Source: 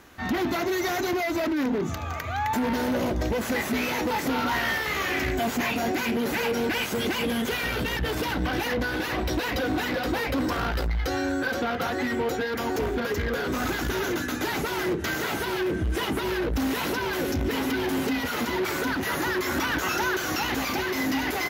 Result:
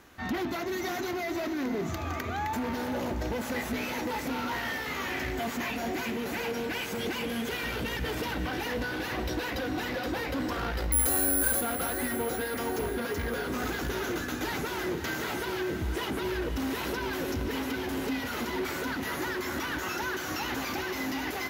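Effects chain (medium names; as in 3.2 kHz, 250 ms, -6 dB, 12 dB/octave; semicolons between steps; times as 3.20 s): gain riding 0.5 s; 10.92–11.61 s: careless resampling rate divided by 4×, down filtered, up zero stuff; echo that smears into a reverb 523 ms, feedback 50%, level -9.5 dB; trim -6 dB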